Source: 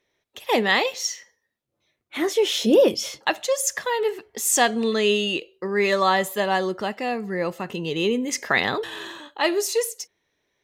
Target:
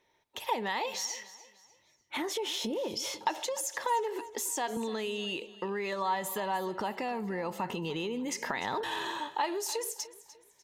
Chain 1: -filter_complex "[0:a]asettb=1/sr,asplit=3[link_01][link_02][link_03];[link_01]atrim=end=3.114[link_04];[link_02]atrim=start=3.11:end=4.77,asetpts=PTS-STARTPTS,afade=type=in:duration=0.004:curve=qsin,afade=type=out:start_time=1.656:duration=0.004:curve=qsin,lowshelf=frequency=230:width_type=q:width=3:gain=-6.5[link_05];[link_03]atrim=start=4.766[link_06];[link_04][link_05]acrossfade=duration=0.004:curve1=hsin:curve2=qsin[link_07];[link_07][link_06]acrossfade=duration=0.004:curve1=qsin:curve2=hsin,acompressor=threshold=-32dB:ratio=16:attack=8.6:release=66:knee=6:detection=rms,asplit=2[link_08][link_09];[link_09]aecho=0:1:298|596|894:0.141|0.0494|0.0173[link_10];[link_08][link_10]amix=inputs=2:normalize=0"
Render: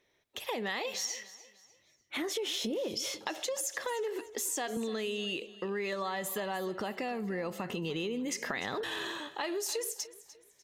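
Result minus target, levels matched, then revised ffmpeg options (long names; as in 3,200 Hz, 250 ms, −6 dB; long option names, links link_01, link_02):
1,000 Hz band −6.0 dB
-filter_complex "[0:a]asettb=1/sr,asplit=3[link_01][link_02][link_03];[link_01]atrim=end=3.114[link_04];[link_02]atrim=start=3.11:end=4.77,asetpts=PTS-STARTPTS,afade=type=in:duration=0.004:curve=qsin,afade=type=out:start_time=1.656:duration=0.004:curve=qsin,lowshelf=frequency=230:width_type=q:width=3:gain=-6.5[link_05];[link_03]atrim=start=4.766[link_06];[link_04][link_05]acrossfade=duration=0.004:curve1=hsin:curve2=qsin[link_07];[link_07][link_06]acrossfade=duration=0.004:curve1=qsin:curve2=hsin,acompressor=threshold=-32dB:ratio=16:attack=8.6:release=66:knee=6:detection=rms,equalizer=frequency=910:width=5.9:gain=14,asplit=2[link_08][link_09];[link_09]aecho=0:1:298|596|894:0.141|0.0494|0.0173[link_10];[link_08][link_10]amix=inputs=2:normalize=0"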